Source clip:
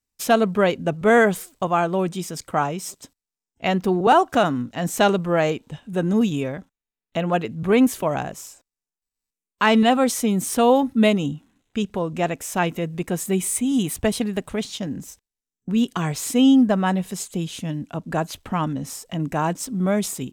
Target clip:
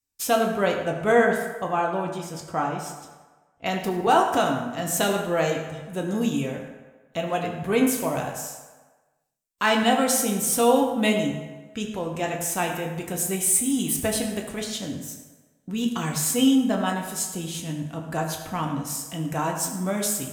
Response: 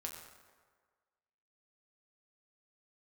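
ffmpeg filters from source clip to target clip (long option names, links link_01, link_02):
-filter_complex "[0:a]asetnsamples=nb_out_samples=441:pad=0,asendcmd='1.12 highshelf g -2.5;3.66 highshelf g 11.5',highshelf=frequency=4800:gain=7.5[link_01];[1:a]atrim=start_sample=2205,asetrate=52920,aresample=44100[link_02];[link_01][link_02]afir=irnorm=-1:irlink=0"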